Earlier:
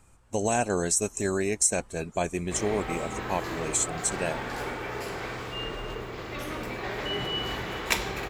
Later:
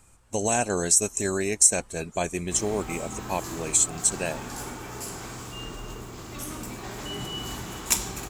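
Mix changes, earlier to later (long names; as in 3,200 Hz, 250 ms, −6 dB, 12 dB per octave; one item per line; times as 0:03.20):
background: add octave-band graphic EQ 250/500/2,000/4,000/8,000 Hz +3/−9/−10/−6/+9 dB
master: add high-shelf EQ 3,500 Hz +7 dB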